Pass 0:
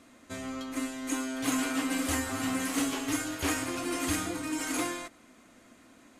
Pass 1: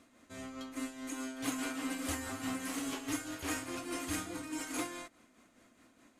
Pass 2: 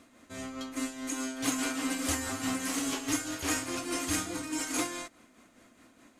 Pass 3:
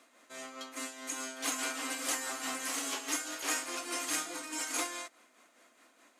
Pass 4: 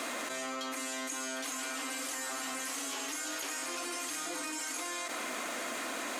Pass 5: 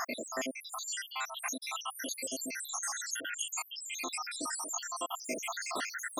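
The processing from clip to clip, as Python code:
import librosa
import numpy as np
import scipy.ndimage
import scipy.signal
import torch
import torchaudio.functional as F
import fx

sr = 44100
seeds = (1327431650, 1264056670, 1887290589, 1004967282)

y1 = x * (1.0 - 0.49 / 2.0 + 0.49 / 2.0 * np.cos(2.0 * np.pi * 4.8 * (np.arange(len(x)) / sr)))
y1 = y1 * librosa.db_to_amplitude(-5.0)
y2 = fx.dynamic_eq(y1, sr, hz=6000.0, q=1.0, threshold_db=-57.0, ratio=4.0, max_db=5)
y2 = y2 * librosa.db_to_amplitude(5.0)
y3 = scipy.signal.sosfilt(scipy.signal.butter(2, 500.0, 'highpass', fs=sr, output='sos'), y2)
y3 = y3 * librosa.db_to_amplitude(-1.0)
y4 = fx.env_flatten(y3, sr, amount_pct=100)
y4 = y4 * librosa.db_to_amplitude(-7.5)
y5 = fx.spec_dropout(y4, sr, seeds[0], share_pct=85)
y5 = y5 * librosa.db_to_amplitude(7.5)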